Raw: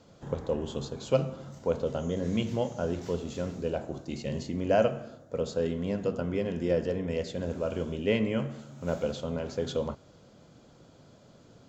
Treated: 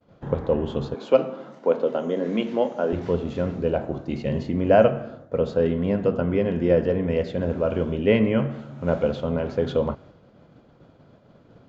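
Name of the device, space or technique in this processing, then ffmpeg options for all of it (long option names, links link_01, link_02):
hearing-loss simulation: -filter_complex "[0:a]asettb=1/sr,asplit=3[link_01][link_02][link_03];[link_01]atrim=end=0.944[link_04];[link_02]atrim=start=0.94:end=2.93,asetpts=PTS-STARTPTS,afade=type=in:duration=0.004:curve=qsin,afade=type=out:start_time=1.986:duration=0.004:curve=qsin,highpass=frequency=230:width=0.5412,highpass=frequency=230:width=1.3066[link_05];[link_03]atrim=start=2.926[link_06];[link_04][link_05]acrossfade=duration=0.004:curve1=hsin:curve2=qsin[link_07];[link_07][link_06]acrossfade=duration=0.004:curve1=qsin:curve2=hsin,lowpass=2500,agate=range=-33dB:threshold=-50dB:ratio=3:detection=peak,volume=8dB"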